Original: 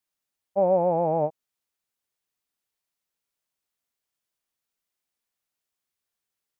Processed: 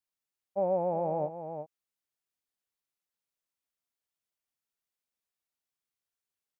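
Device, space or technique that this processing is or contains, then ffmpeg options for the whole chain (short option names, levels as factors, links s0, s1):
ducked delay: -filter_complex "[0:a]asplit=3[s0][s1][s2];[s1]adelay=360,volume=0.422[s3];[s2]apad=whole_len=306900[s4];[s3][s4]sidechaincompress=threshold=0.0562:ratio=8:attack=30:release=451[s5];[s0][s5]amix=inputs=2:normalize=0,volume=0.422"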